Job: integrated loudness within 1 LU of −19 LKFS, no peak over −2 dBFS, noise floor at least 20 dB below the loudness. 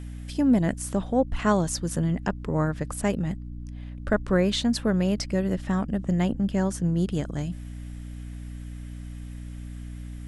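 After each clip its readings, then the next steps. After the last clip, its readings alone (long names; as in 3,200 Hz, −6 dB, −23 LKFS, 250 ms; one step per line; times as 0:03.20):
mains hum 60 Hz; hum harmonics up to 300 Hz; level of the hum −35 dBFS; integrated loudness −26.0 LKFS; sample peak −8.5 dBFS; target loudness −19.0 LKFS
→ mains-hum notches 60/120/180/240/300 Hz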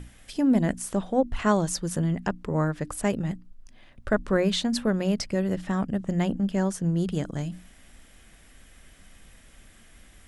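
mains hum none found; integrated loudness −26.5 LKFS; sample peak −10.0 dBFS; target loudness −19.0 LKFS
→ level +7.5 dB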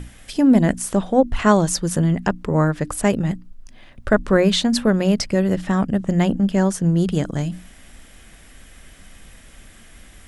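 integrated loudness −19.0 LKFS; sample peak −2.5 dBFS; background noise floor −46 dBFS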